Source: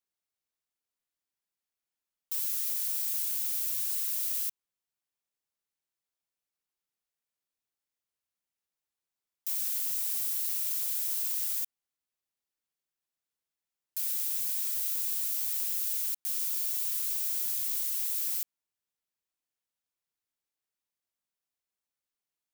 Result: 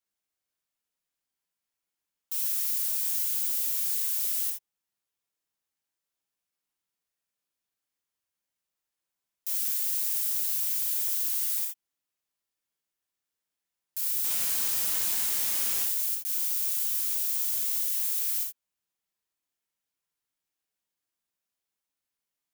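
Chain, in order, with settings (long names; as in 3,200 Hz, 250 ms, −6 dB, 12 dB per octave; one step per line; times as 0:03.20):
0:14.24–0:15.84: each half-wave held at its own peak
reverb whose tail is shaped and stops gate 100 ms flat, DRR 0 dB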